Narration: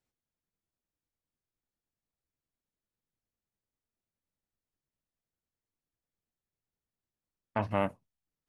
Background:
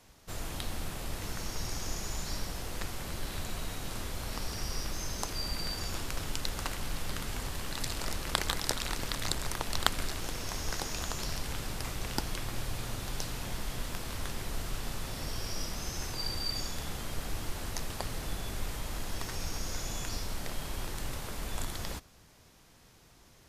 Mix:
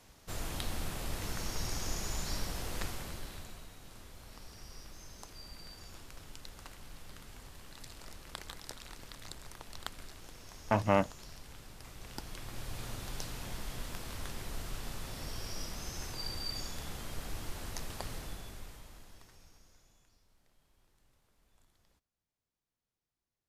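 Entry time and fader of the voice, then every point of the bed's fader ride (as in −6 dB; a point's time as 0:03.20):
3.15 s, +2.5 dB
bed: 0:02.85 −0.5 dB
0:03.71 −14.5 dB
0:11.76 −14.5 dB
0:12.83 −4.5 dB
0:18.13 −4.5 dB
0:20.16 −34 dB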